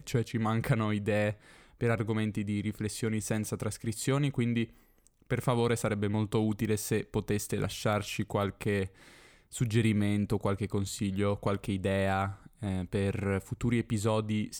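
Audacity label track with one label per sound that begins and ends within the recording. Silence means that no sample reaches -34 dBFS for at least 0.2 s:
1.810000	4.640000	sound
5.310000	8.860000	sound
9.540000	12.310000	sound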